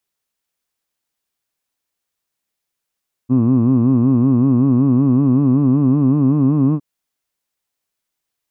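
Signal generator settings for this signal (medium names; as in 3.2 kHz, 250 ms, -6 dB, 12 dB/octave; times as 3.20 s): formant vowel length 3.51 s, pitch 121 Hz, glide +3 st, vibrato depth 1.4 st, F1 260 Hz, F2 1.1 kHz, F3 2.6 kHz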